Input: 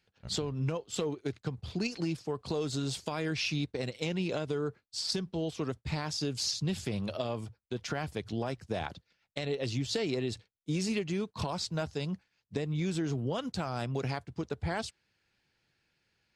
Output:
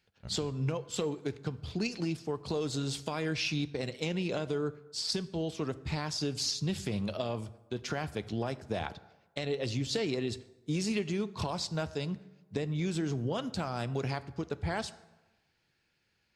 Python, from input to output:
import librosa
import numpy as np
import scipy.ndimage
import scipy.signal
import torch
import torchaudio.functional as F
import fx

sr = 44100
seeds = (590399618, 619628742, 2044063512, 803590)

y = fx.rev_plate(x, sr, seeds[0], rt60_s=1.1, hf_ratio=0.6, predelay_ms=0, drr_db=14.5)